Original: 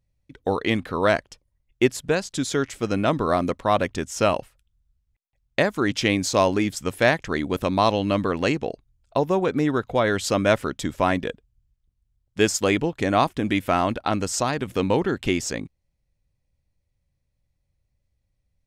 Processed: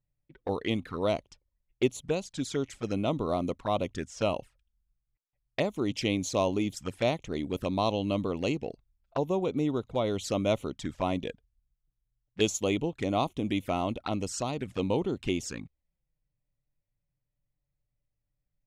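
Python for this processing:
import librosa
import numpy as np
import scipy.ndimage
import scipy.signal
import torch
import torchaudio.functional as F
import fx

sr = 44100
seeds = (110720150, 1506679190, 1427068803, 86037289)

y = fx.dynamic_eq(x, sr, hz=4400.0, q=1.1, threshold_db=-42.0, ratio=4.0, max_db=6, at=(11.18, 12.49), fade=0.02)
y = fx.env_flanger(y, sr, rest_ms=6.9, full_db=-20.0)
y = fx.env_lowpass(y, sr, base_hz=2500.0, full_db=-22.0)
y = F.gain(torch.from_numpy(y), -6.0).numpy()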